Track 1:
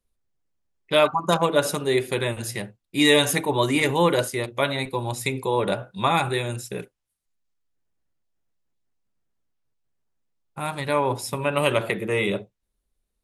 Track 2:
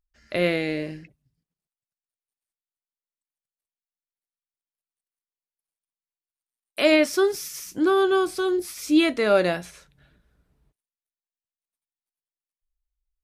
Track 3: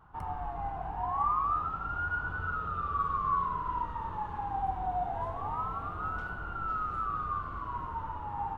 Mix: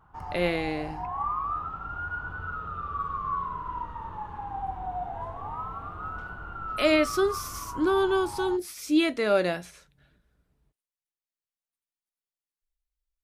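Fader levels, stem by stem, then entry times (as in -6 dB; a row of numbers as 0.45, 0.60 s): off, -4.0 dB, -1.0 dB; off, 0.00 s, 0.00 s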